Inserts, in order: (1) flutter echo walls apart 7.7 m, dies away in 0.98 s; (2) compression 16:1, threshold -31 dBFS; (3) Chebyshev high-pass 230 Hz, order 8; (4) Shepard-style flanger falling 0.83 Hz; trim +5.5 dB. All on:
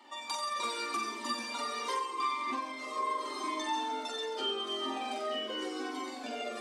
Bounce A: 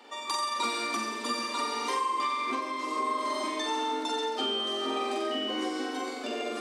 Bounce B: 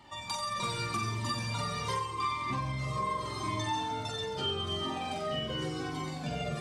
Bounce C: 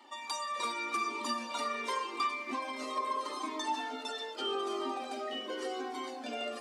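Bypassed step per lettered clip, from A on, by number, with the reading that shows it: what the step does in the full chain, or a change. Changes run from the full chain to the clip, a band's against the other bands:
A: 4, 250 Hz band +2.0 dB; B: 3, 250 Hz band +2.5 dB; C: 1, 4 kHz band -2.5 dB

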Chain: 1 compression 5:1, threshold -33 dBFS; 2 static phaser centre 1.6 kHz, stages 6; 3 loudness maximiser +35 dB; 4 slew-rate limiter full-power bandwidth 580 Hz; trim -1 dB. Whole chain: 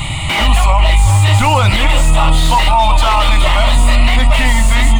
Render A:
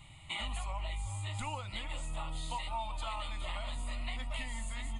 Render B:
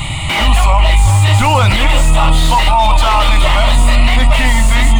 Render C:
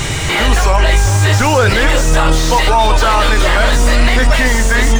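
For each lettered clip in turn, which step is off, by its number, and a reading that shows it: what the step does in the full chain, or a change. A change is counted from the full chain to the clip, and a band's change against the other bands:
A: 3, crest factor change +6.0 dB; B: 1, mean gain reduction 8.0 dB; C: 2, 125 Hz band -4.5 dB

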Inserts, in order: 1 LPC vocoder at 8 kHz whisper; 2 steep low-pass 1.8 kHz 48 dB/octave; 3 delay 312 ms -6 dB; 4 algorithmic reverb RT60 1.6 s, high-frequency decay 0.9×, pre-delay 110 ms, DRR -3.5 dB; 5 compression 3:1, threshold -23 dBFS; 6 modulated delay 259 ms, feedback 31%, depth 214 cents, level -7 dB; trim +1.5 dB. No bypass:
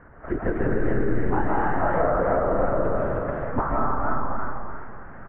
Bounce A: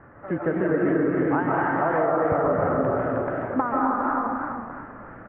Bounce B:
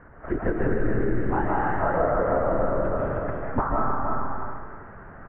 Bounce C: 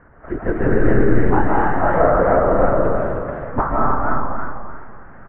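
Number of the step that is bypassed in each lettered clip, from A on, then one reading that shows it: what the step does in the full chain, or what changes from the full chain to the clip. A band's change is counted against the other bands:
1, 125 Hz band -4.0 dB; 6, momentary loudness spread change +1 LU; 5, mean gain reduction 4.0 dB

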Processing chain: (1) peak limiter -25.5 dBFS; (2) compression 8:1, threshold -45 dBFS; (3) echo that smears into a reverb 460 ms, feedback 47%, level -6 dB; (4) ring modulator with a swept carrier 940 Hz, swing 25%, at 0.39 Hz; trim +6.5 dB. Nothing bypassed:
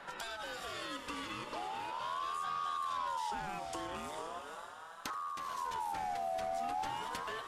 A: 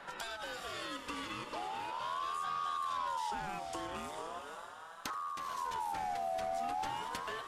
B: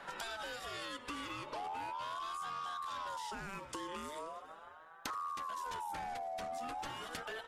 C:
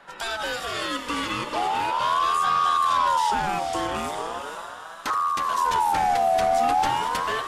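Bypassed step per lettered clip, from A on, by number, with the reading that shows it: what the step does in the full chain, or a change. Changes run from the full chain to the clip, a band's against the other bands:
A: 1, mean gain reduction 2.5 dB; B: 3, momentary loudness spread change -2 LU; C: 2, mean gain reduction 13.0 dB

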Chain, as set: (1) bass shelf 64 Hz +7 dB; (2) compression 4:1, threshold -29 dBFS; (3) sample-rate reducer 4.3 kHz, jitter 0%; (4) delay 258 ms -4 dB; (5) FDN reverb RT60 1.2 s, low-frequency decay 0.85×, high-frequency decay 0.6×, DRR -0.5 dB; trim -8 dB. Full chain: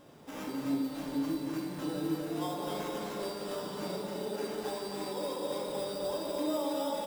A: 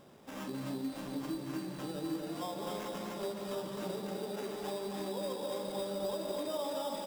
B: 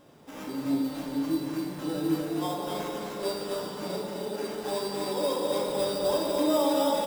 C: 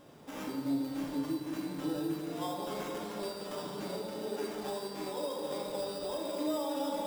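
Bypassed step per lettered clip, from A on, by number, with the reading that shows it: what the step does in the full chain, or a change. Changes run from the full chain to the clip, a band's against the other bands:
5, echo-to-direct 3.0 dB to -4.0 dB; 2, crest factor change +2.5 dB; 4, echo-to-direct 3.0 dB to 0.5 dB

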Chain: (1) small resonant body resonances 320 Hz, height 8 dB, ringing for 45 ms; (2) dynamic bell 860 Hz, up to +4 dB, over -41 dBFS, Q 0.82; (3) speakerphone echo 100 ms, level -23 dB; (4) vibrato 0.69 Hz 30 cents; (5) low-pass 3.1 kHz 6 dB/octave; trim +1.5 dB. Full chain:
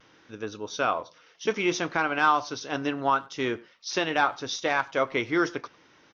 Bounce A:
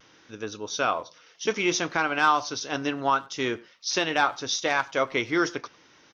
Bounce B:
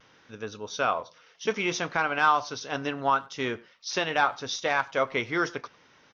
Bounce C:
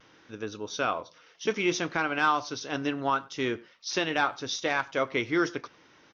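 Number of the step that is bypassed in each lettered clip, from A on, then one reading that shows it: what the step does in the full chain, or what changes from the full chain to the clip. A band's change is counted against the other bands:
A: 5, 4 kHz band +4.0 dB; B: 1, 250 Hz band -4.0 dB; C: 2, 1 kHz band -2.5 dB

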